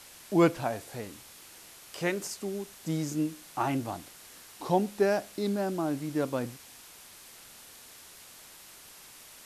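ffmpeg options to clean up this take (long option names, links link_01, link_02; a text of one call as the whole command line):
ffmpeg -i in.wav -af "afwtdn=0.0035" out.wav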